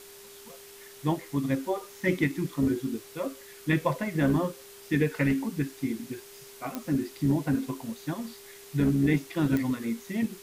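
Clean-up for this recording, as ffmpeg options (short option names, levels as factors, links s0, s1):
-af "adeclick=t=4,bandreject=f=400:w=30,afftdn=nr=24:nf=-48"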